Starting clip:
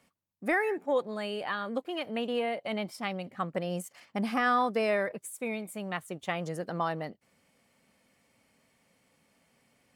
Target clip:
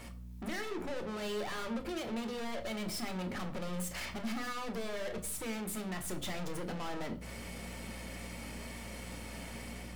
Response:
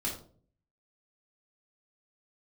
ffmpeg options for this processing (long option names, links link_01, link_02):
-filter_complex "[0:a]dynaudnorm=framelen=130:gausssize=5:maxgain=5dB,alimiter=limit=-24dB:level=0:latency=1:release=86,acompressor=threshold=-41dB:ratio=10,aeval=exprs='val(0)+0.000447*(sin(2*PI*60*n/s)+sin(2*PI*2*60*n/s)/2+sin(2*PI*3*60*n/s)/3+sin(2*PI*4*60*n/s)/4+sin(2*PI*5*60*n/s)/5)':channel_layout=same,aeval=exprs='(tanh(708*val(0)+0.2)-tanh(0.2))/708':channel_layout=same,asplit=2[link_01][link_02];[1:a]atrim=start_sample=2205[link_03];[link_02][link_03]afir=irnorm=-1:irlink=0,volume=-6dB[link_04];[link_01][link_04]amix=inputs=2:normalize=0,volume=15.5dB"